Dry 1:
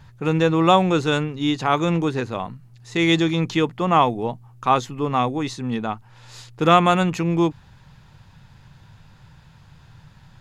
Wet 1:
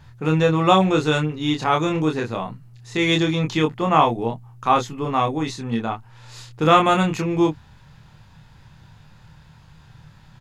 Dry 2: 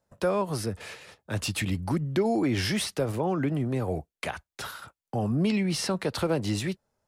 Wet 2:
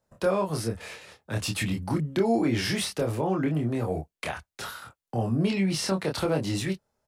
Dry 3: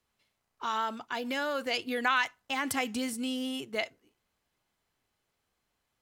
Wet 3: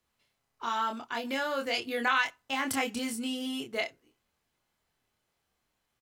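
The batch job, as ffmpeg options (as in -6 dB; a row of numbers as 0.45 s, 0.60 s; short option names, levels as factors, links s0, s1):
-filter_complex "[0:a]asplit=2[s0][s1];[s1]adelay=26,volume=0.668[s2];[s0][s2]amix=inputs=2:normalize=0,volume=0.891"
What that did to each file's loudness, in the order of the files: +0.5 LU, +0.5 LU, +0.5 LU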